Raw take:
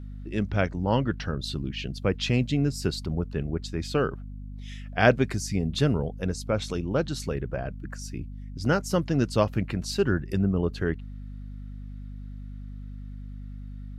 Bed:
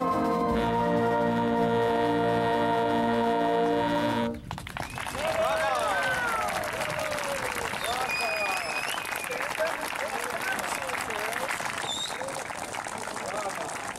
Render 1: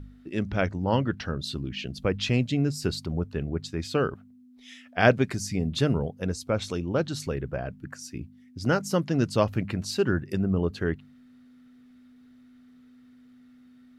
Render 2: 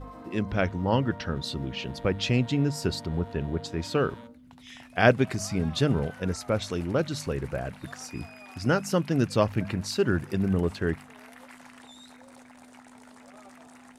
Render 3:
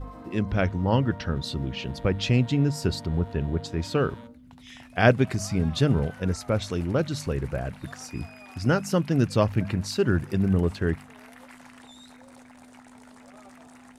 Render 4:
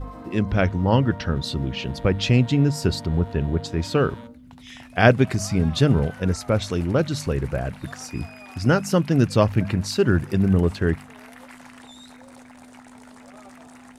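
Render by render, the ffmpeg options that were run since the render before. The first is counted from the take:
-af "bandreject=f=50:t=h:w=4,bandreject=f=100:t=h:w=4,bandreject=f=150:t=h:w=4,bandreject=f=200:t=h:w=4"
-filter_complex "[1:a]volume=0.106[s0];[0:a][s0]amix=inputs=2:normalize=0"
-af "lowshelf=f=140:g=7"
-af "volume=1.58,alimiter=limit=0.891:level=0:latency=1"

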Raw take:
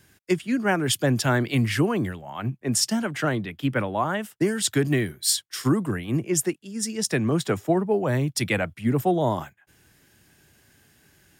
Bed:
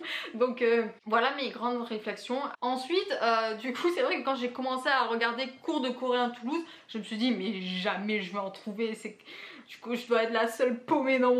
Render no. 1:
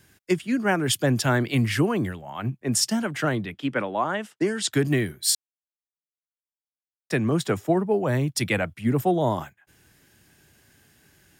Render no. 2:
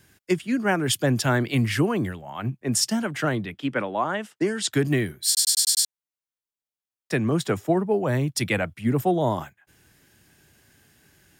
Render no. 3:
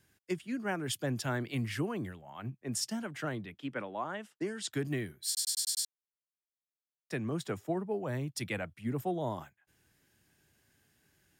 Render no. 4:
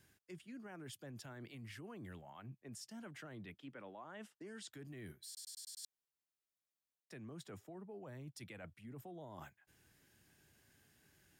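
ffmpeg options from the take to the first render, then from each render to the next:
-filter_complex "[0:a]asettb=1/sr,asplit=3[s0][s1][s2];[s0]atrim=end=3.544[s3];[s1]atrim=start=3.54:end=4.73,asetpts=PTS-STARTPTS,afade=t=in:d=0.004:c=qsin,afade=t=out:st=1.186:d=0.004:c=qsin,highpass=210,lowpass=7200[s4];[s2]atrim=start=4.726[s5];[s3][s4]acrossfade=d=0.004:c1=hsin:c2=qsin[s6];[s6][s5]acrossfade=d=0.004:c1=qsin:c2=hsin,asplit=3[s7][s8][s9];[s7]atrim=end=5.35,asetpts=PTS-STARTPTS,afade=t=out:st=5.346:d=0.004:c=hsin[s10];[s8]atrim=start=5.35:end=7.1,asetpts=PTS-STARTPTS,volume=0[s11];[s9]atrim=start=7.1,asetpts=PTS-STARTPTS,afade=t=in:d=0.004:c=hsin[s12];[s10][s11][s12]concat=n=3:v=0:a=1"
-filter_complex "[0:a]asplit=7[s0][s1][s2][s3][s4][s5][s6];[s0]atrim=end=5.372[s7];[s1]atrim=start=5.268:end=5.372[s8];[s2]atrim=start=5.268:end=5.372[s9];[s3]atrim=start=5.268:end=5.372[s10];[s4]atrim=start=5.268:end=5.372[s11];[s5]atrim=start=5.268:end=5.372[s12];[s6]atrim=start=5.868[s13];[s7][s8]acrossfade=d=0.004:c1=hsin:c2=hsin[s14];[s14][s9]acrossfade=d=0.004:c1=hsin:c2=hsin[s15];[s15][s10]acrossfade=d=0.004:c1=hsin:c2=hsin[s16];[s16][s11]acrossfade=d=0.004:c1=hsin:c2=hsin[s17];[s17][s12]acrossfade=d=0.004:c1=hsin:c2=hsin[s18];[s18][s13]acrossfade=d=0.004:c1=hsin:c2=hsin"
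-af "volume=0.251"
-af "alimiter=level_in=2.66:limit=0.0631:level=0:latency=1:release=101,volume=0.376,areverse,acompressor=threshold=0.00355:ratio=6,areverse"

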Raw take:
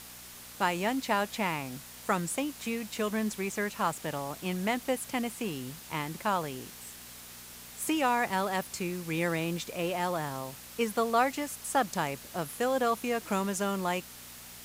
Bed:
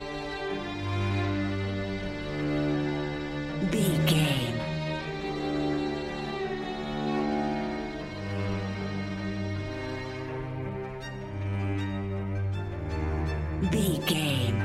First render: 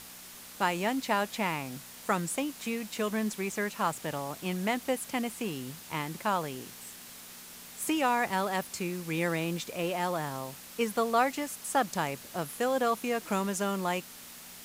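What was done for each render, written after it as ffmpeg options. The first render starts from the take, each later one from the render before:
-af "bandreject=f=60:t=h:w=4,bandreject=f=120:t=h:w=4"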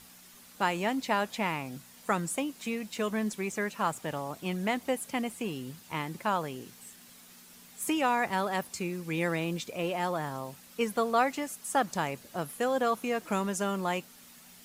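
-af "afftdn=nr=8:nf=-48"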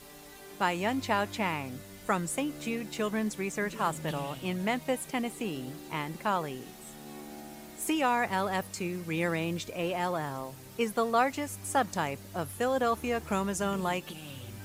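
-filter_complex "[1:a]volume=0.141[s0];[0:a][s0]amix=inputs=2:normalize=0"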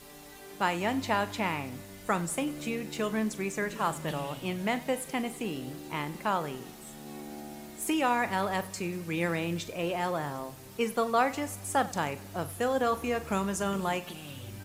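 -filter_complex "[0:a]asplit=2[s0][s1];[s1]adelay=41,volume=0.2[s2];[s0][s2]amix=inputs=2:normalize=0,aecho=1:1:95|190|285|380|475:0.1|0.057|0.0325|0.0185|0.0106"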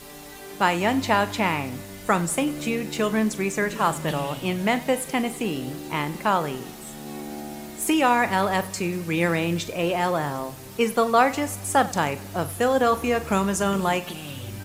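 -af "volume=2.37"

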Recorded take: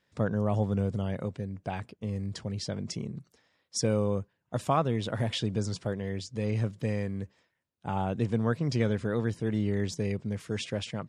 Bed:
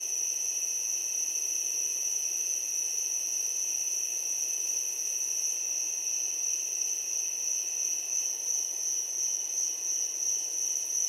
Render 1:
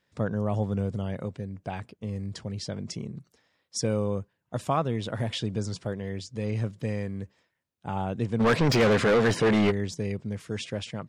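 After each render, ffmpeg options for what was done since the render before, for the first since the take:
-filter_complex "[0:a]asplit=3[s0][s1][s2];[s0]afade=t=out:st=8.39:d=0.02[s3];[s1]asplit=2[s4][s5];[s5]highpass=f=720:p=1,volume=39.8,asoftclip=type=tanh:threshold=0.224[s6];[s4][s6]amix=inputs=2:normalize=0,lowpass=f=2900:p=1,volume=0.501,afade=t=in:st=8.39:d=0.02,afade=t=out:st=9.7:d=0.02[s7];[s2]afade=t=in:st=9.7:d=0.02[s8];[s3][s7][s8]amix=inputs=3:normalize=0"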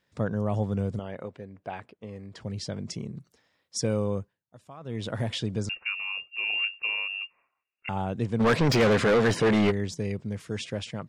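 -filter_complex "[0:a]asettb=1/sr,asplit=3[s0][s1][s2];[s0]atrim=end=0.994[s3];[s1]atrim=start=0.99:end=2.41,asetpts=PTS-STARTPTS,afade=t=in:d=0.004:c=qsin,afade=t=out:st=1.416:d=0.004:c=qsin,bass=f=250:g=-11,treble=f=4000:g=-11[s4];[s2]atrim=start=2.406[s5];[s3][s4]acrossfade=d=0.004:c1=hsin:c2=qsin[s6];[s6][s5]acrossfade=d=0.004:c1=qsin:c2=hsin,asettb=1/sr,asplit=3[s7][s8][s9];[s7]atrim=end=5.694[s10];[s8]atrim=start=5.69:end=7.89,asetpts=PTS-STARTPTS,afade=t=in:d=0.004:c=qsin,afade=t=out:st=2.196:d=0.004:c=qsin,lowpass=f=2500:t=q:w=0.5098,lowpass=f=2500:t=q:w=0.6013,lowpass=f=2500:t=q:w=0.9,lowpass=f=2500:t=q:w=2.563,afreqshift=-2900[s11];[s9]atrim=start=7.886[s12];[s10][s11]acrossfade=d=0.004:c1=hsin:c2=qsin[s13];[s13][s12]acrossfade=d=0.004:c1=qsin:c2=hsin,asplit=3[s14][s15][s16];[s14]atrim=end=4.45,asetpts=PTS-STARTPTS,afade=t=out:st=4.2:d=0.25:silence=0.1[s17];[s15]atrim=start=4.45:end=4.8,asetpts=PTS-STARTPTS,volume=0.1[s18];[s16]atrim=start=4.8,asetpts=PTS-STARTPTS,afade=t=in:d=0.25:silence=0.1[s19];[s17][s18][s19]concat=n=3:v=0:a=1"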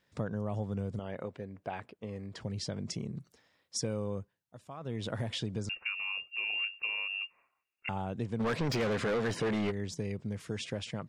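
-af "acompressor=threshold=0.02:ratio=2.5"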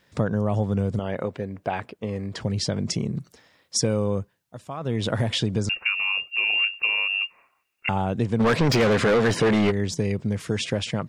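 -af "volume=3.76"

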